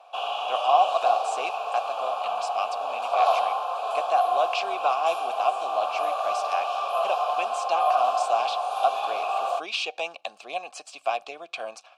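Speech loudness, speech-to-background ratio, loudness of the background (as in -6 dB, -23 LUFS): -29.5 LUFS, -2.5 dB, -27.0 LUFS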